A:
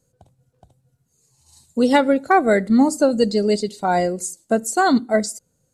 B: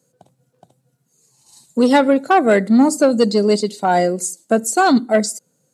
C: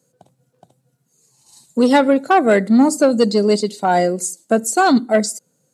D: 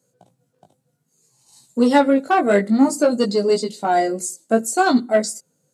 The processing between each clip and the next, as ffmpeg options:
ffmpeg -i in.wav -af "acontrast=79,highpass=frequency=150:width=0.5412,highpass=frequency=150:width=1.3066,volume=-2.5dB" out.wav
ffmpeg -i in.wav -af anull out.wav
ffmpeg -i in.wav -af "flanger=delay=16:depth=4:speed=0.61" out.wav

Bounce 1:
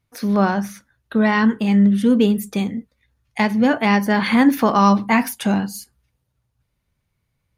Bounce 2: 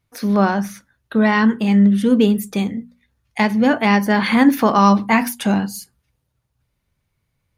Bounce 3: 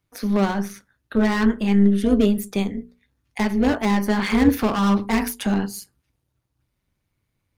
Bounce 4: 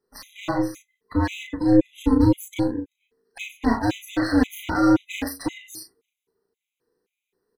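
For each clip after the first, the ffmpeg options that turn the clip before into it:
ffmpeg -i in.wav -af "bandreject=frequency=60:width_type=h:width=6,bandreject=frequency=120:width_type=h:width=6,bandreject=frequency=180:width_type=h:width=6,bandreject=frequency=240:width_type=h:width=6,volume=1.5dB" out.wav
ffmpeg -i in.wav -filter_complex "[0:a]acrossover=split=390|6200[link_01][link_02][link_03];[link_02]asoftclip=type=hard:threshold=-20.5dB[link_04];[link_03]acrusher=bits=4:mode=log:mix=0:aa=0.000001[link_05];[link_01][link_04][link_05]amix=inputs=3:normalize=0,tremolo=f=200:d=0.667" out.wav
ffmpeg -i in.wav -filter_complex "[0:a]afftfilt=real='real(if(between(b,1,1008),(2*floor((b-1)/24)+1)*24-b,b),0)':imag='imag(if(between(b,1,1008),(2*floor((b-1)/24)+1)*24-b,b),0)*if(between(b,1,1008),-1,1)':win_size=2048:overlap=0.75,asplit=2[link_01][link_02];[link_02]adelay=35,volume=-4dB[link_03];[link_01][link_03]amix=inputs=2:normalize=0,afftfilt=real='re*gt(sin(2*PI*1.9*pts/sr)*(1-2*mod(floor(b*sr/1024/2000),2)),0)':imag='im*gt(sin(2*PI*1.9*pts/sr)*(1-2*mod(floor(b*sr/1024/2000),2)),0)':win_size=1024:overlap=0.75,volume=-1.5dB" out.wav

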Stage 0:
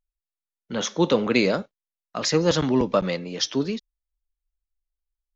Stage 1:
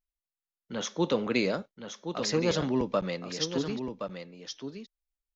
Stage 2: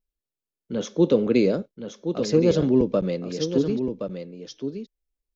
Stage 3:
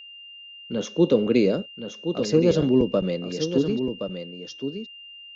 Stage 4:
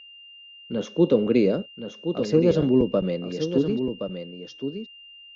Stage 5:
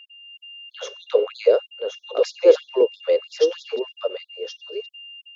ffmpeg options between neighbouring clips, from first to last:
ffmpeg -i in.wav -af "aecho=1:1:1071:0.398,volume=-7dB" out.wav
ffmpeg -i in.wav -af "lowshelf=frequency=630:width_type=q:width=1.5:gain=9.5,bandreject=frequency=1900:width=14,volume=-2dB" out.wav
ffmpeg -i in.wav -af "aeval=exprs='val(0)+0.00891*sin(2*PI*2800*n/s)':channel_layout=same" out.wav
ffmpeg -i in.wav -af "lowpass=frequency=2700:poles=1" out.wav
ffmpeg -i in.wav -af "lowshelf=frequency=360:width_type=q:width=3:gain=-8.5,dynaudnorm=framelen=200:gausssize=3:maxgain=5.5dB,afftfilt=real='re*gte(b*sr/1024,250*pow(3400/250,0.5+0.5*sin(2*PI*3.1*pts/sr)))':imag='im*gte(b*sr/1024,250*pow(3400/250,0.5+0.5*sin(2*PI*3.1*pts/sr)))':win_size=1024:overlap=0.75,volume=1dB" out.wav

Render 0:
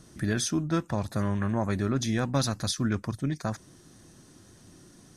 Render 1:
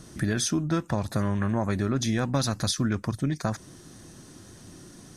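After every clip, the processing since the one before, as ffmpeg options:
ffmpeg -i in.wav -af "acompressor=threshold=-30dB:ratio=2.5,volume=6dB" out.wav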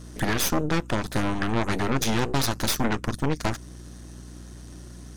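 ffmpeg -i in.wav -af "aeval=exprs='0.237*(cos(1*acos(clip(val(0)/0.237,-1,1)))-cos(1*PI/2))+0.075*(cos(8*acos(clip(val(0)/0.237,-1,1)))-cos(8*PI/2))':channel_layout=same,bass=frequency=250:gain=-4,treble=frequency=4000:gain=-1,aeval=exprs='val(0)+0.00891*(sin(2*PI*60*n/s)+sin(2*PI*2*60*n/s)/2+sin(2*PI*3*60*n/s)/3+sin(2*PI*4*60*n/s)/4+sin(2*PI*5*60*n/s)/5)':channel_layout=same" out.wav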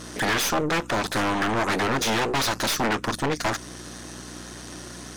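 ffmpeg -i in.wav -filter_complex "[0:a]asplit=2[link_01][link_02];[link_02]highpass=frequency=720:poles=1,volume=23dB,asoftclip=type=tanh:threshold=-12.5dB[link_03];[link_01][link_03]amix=inputs=2:normalize=0,lowpass=frequency=5300:poles=1,volume=-6dB,volume=-3dB" out.wav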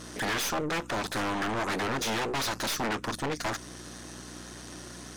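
ffmpeg -i in.wav -af "asoftclip=type=tanh:threshold=-19.5dB,volume=-4.5dB" out.wav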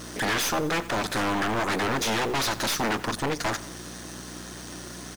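ffmpeg -i in.wav -af "aecho=1:1:89|178|267|356|445:0.133|0.0707|0.0375|0.0199|0.0105,acrusher=bits=8:mix=0:aa=0.000001,volume=4dB" out.wav

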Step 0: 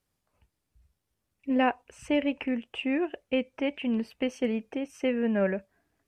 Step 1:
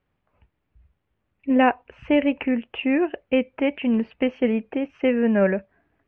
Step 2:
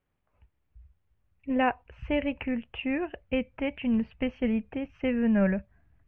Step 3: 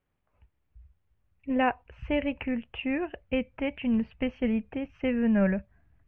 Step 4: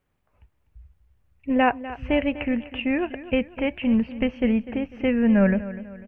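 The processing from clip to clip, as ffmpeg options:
ffmpeg -i in.wav -af "lowpass=frequency=2800:width=0.5412,lowpass=frequency=2800:width=1.3066,volume=7dB" out.wav
ffmpeg -i in.wav -af "asubboost=boost=11:cutoff=110,volume=-6dB" out.wav
ffmpeg -i in.wav -af anull out.wav
ffmpeg -i in.wav -af "aecho=1:1:248|496|744|992:0.178|0.0747|0.0314|0.0132,volume=5.5dB" out.wav

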